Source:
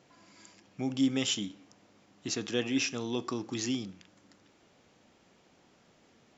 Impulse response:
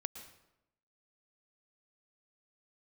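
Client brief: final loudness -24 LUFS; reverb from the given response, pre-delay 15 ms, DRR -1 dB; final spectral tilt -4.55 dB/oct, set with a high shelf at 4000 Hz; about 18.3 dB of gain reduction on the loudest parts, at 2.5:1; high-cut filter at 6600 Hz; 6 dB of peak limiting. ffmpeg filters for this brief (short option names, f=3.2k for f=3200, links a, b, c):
-filter_complex "[0:a]lowpass=6.6k,highshelf=f=4k:g=-4,acompressor=threshold=-52dB:ratio=2.5,alimiter=level_in=16.5dB:limit=-24dB:level=0:latency=1,volume=-16.5dB,asplit=2[a][b];[1:a]atrim=start_sample=2205,adelay=15[c];[b][c]afir=irnorm=-1:irlink=0,volume=2.5dB[d];[a][d]amix=inputs=2:normalize=0,volume=24dB"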